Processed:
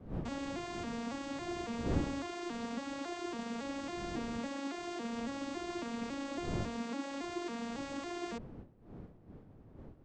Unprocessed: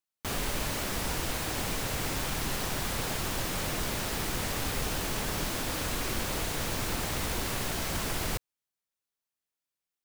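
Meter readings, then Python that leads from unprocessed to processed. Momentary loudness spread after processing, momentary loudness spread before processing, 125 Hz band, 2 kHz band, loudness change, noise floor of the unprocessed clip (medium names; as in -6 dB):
15 LU, 0 LU, -9.0 dB, -11.0 dB, -8.0 dB, under -85 dBFS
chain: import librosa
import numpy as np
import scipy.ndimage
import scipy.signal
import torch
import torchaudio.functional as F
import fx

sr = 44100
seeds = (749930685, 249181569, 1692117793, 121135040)

y = fx.vocoder_arp(x, sr, chord='minor triad', root=58, every_ms=277)
y = fx.dmg_wind(y, sr, seeds[0], corner_hz=260.0, level_db=-41.0)
y = y * librosa.db_to_amplitude(-5.0)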